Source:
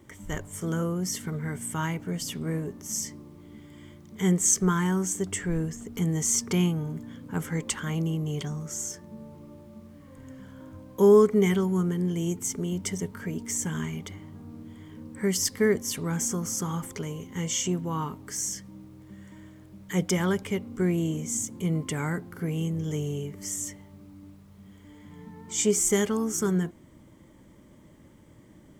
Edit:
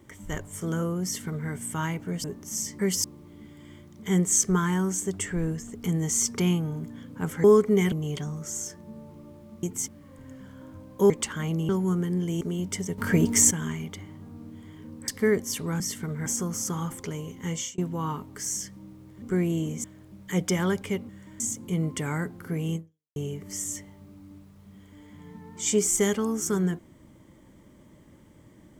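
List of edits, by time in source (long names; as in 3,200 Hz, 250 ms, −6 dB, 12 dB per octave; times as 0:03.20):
0:01.04–0:01.50: duplicate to 0:16.18
0:02.24–0:02.62: remove
0:07.57–0:08.16: swap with 0:11.09–0:11.57
0:12.29–0:12.54: move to 0:09.87
0:13.11–0:13.64: clip gain +11.5 dB
0:15.21–0:15.46: move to 0:03.17
0:17.45–0:17.70: fade out
0:19.14–0:19.45: swap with 0:20.70–0:21.32
0:22.68–0:23.08: fade out exponential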